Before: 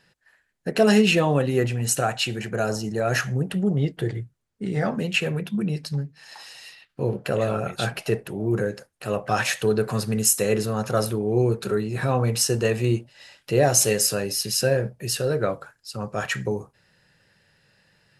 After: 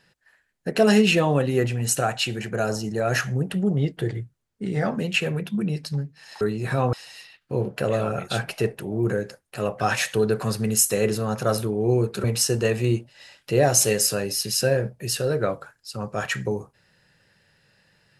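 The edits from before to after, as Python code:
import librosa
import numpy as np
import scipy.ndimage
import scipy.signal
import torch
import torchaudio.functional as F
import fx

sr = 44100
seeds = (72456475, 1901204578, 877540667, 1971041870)

y = fx.edit(x, sr, fx.move(start_s=11.72, length_s=0.52, to_s=6.41), tone=tone)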